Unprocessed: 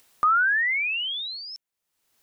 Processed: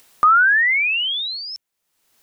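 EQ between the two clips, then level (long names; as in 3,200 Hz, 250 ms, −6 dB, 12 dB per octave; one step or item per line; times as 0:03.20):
parametric band 88 Hz −8 dB 0.22 octaves
+7.0 dB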